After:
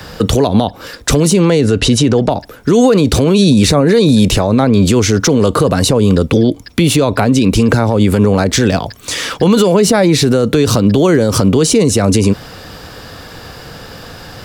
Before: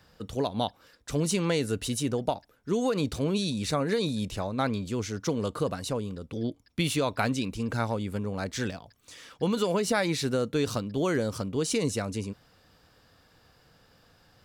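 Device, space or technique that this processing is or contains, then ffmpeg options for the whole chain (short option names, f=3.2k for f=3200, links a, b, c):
mastering chain: -filter_complex "[0:a]asettb=1/sr,asplit=3[a][b][c];[a]atrim=end=1.614[d];[b]atrim=start=1.61:end=2.31,asetpts=PTS-STARTPTS,afade=t=in:d=0.004:c=qsin,afade=t=out:st=0.696:d=0.004:c=qsin,lowpass=5.7k[e];[c]atrim=start=2.306[f];[d][e]acrossfade=d=0.004:c1=hsin:c2=qsin[g];[g][f]acrossfade=d=0.004:c1=qsin:c2=hsin,equalizer=f=400:t=o:w=0.77:g=2,acrossover=split=220|740[h][i][j];[h]acompressor=threshold=-33dB:ratio=4[k];[i]acompressor=threshold=-29dB:ratio=4[l];[j]acompressor=threshold=-40dB:ratio=4[m];[k][l][m]amix=inputs=3:normalize=0,acompressor=threshold=-32dB:ratio=2.5,asoftclip=type=hard:threshold=-23dB,alimiter=level_in=29.5dB:limit=-1dB:release=50:level=0:latency=1,volume=-1dB"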